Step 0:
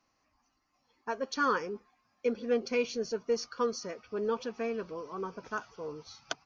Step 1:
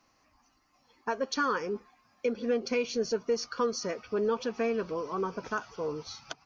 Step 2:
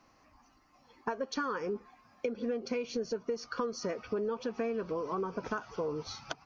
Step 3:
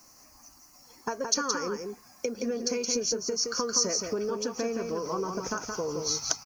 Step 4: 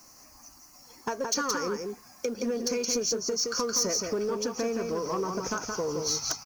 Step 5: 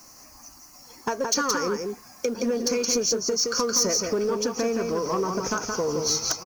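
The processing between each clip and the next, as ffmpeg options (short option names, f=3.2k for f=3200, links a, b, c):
-filter_complex "[0:a]asplit=2[a][b];[b]acompressor=threshold=-36dB:ratio=6,volume=2dB[c];[a][c]amix=inputs=2:normalize=0,alimiter=limit=-19.5dB:level=0:latency=1:release=204"
-af "highshelf=f=2.4k:g=-7.5,acompressor=threshold=-37dB:ratio=6,volume=5.5dB"
-af "aexciter=amount=15.3:drive=4.1:freq=5.3k,aecho=1:1:170:0.562,volume=2dB"
-filter_complex "[0:a]asplit=2[a][b];[b]acrusher=bits=3:mode=log:mix=0:aa=0.000001,volume=-11dB[c];[a][c]amix=inputs=2:normalize=0,asoftclip=type=tanh:threshold=-20.5dB"
-filter_complex "[0:a]asplit=2[a][b];[b]adelay=1283,volume=-18dB,highshelf=f=4k:g=-28.9[c];[a][c]amix=inputs=2:normalize=0,volume=4.5dB"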